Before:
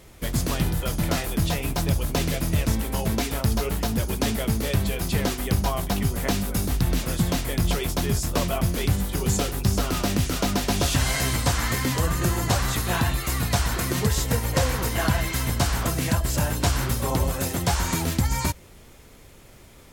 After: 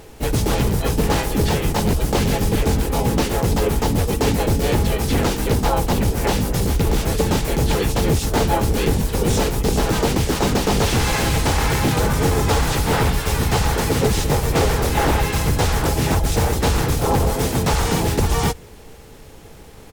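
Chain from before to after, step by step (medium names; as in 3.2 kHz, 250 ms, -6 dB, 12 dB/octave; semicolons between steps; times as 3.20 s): bass shelf 470 Hz +2.5 dB; harmony voices -12 st -3 dB, -4 st -1 dB, +4 st -1 dB; wavefolder -12 dBFS; small resonant body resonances 450/830 Hz, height 9 dB; slew-rate limiter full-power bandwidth 400 Hz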